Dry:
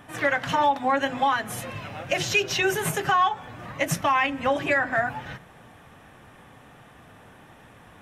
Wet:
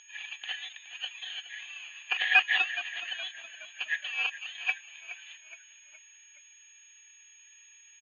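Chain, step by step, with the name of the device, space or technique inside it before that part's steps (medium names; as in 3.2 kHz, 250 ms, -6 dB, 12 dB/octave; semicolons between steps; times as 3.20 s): 1.55–2.09 s: steep low-pass 9.2 kHz 48 dB/octave; FFT band-pass 2.3–5.7 kHz; toy sound module (decimation joined by straight lines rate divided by 6×; class-D stage that switches slowly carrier 6.6 kHz; cabinet simulation 600–3800 Hz, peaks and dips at 780 Hz +6 dB, 1.7 kHz +9 dB, 3.3 kHz +8 dB); tilt EQ -1.5 dB/octave; frequency-shifting echo 419 ms, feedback 48%, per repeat -40 Hz, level -14.5 dB; trim +6.5 dB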